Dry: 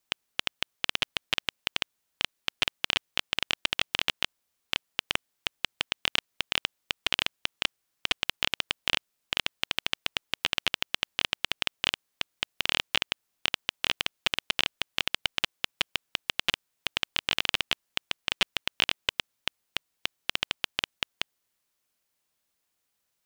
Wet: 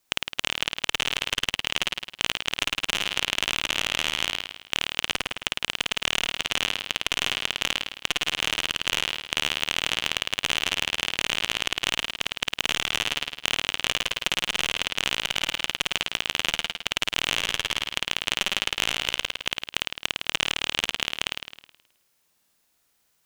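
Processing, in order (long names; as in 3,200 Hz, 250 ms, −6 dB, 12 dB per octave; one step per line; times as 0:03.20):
flutter between parallel walls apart 9.1 metres, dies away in 0.84 s
boost into a limiter +6 dB
saturating transformer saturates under 1,500 Hz
level +1 dB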